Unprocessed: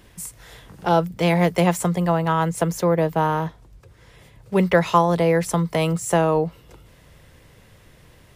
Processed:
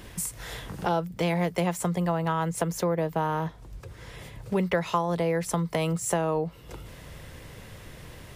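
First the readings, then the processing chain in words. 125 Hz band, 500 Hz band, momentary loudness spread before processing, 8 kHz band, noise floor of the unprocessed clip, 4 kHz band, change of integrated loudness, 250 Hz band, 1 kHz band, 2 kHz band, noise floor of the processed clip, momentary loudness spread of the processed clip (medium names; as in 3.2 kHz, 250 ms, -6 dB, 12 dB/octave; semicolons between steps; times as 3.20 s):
-7.0 dB, -7.5 dB, 10 LU, -2.5 dB, -52 dBFS, -5.5 dB, -7.5 dB, -7.0 dB, -7.5 dB, -7.0 dB, -47 dBFS, 19 LU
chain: compression 2.5:1, threshold -36 dBFS, peak gain reduction 17 dB; trim +6 dB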